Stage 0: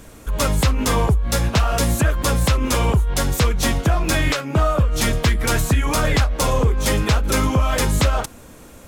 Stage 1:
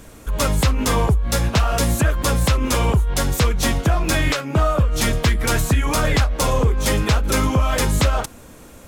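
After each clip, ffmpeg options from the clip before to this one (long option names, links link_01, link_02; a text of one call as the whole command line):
ffmpeg -i in.wav -af anull out.wav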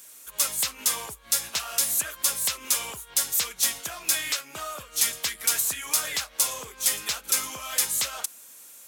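ffmpeg -i in.wav -af "aderivative,volume=2.5dB" out.wav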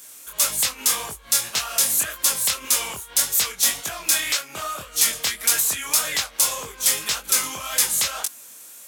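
ffmpeg -i in.wav -af "flanger=delay=19.5:depth=7.1:speed=1.8,volume=8dB" out.wav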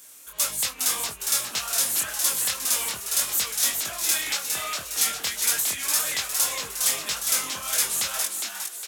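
ffmpeg -i in.wav -filter_complex "[0:a]asplit=7[link_01][link_02][link_03][link_04][link_05][link_06][link_07];[link_02]adelay=409,afreqshift=140,volume=-4.5dB[link_08];[link_03]adelay=818,afreqshift=280,volume=-10.9dB[link_09];[link_04]adelay=1227,afreqshift=420,volume=-17.3dB[link_10];[link_05]adelay=1636,afreqshift=560,volume=-23.6dB[link_11];[link_06]adelay=2045,afreqshift=700,volume=-30dB[link_12];[link_07]adelay=2454,afreqshift=840,volume=-36.4dB[link_13];[link_01][link_08][link_09][link_10][link_11][link_12][link_13]amix=inputs=7:normalize=0,volume=-4.5dB" out.wav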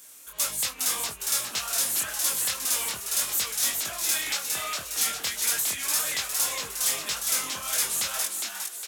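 ffmpeg -i in.wav -af "asoftclip=type=tanh:threshold=-15dB,volume=-1dB" out.wav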